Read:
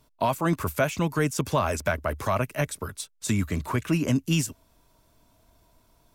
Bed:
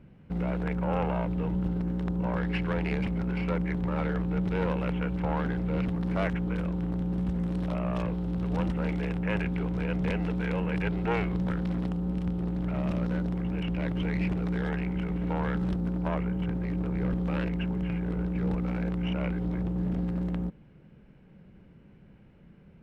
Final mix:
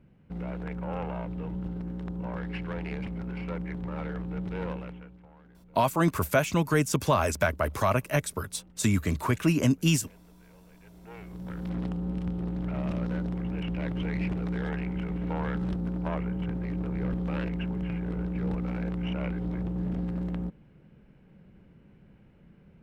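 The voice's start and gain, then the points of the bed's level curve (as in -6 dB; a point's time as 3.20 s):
5.55 s, +0.5 dB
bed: 4.73 s -5.5 dB
5.30 s -26.5 dB
10.80 s -26.5 dB
11.77 s -1.5 dB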